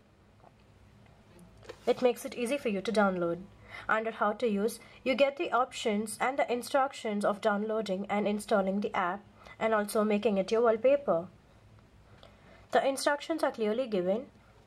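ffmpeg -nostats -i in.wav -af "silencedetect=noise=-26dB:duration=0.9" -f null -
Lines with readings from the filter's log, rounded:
silence_start: 0.00
silence_end: 1.88 | silence_duration: 1.88
silence_start: 11.19
silence_end: 12.73 | silence_duration: 1.55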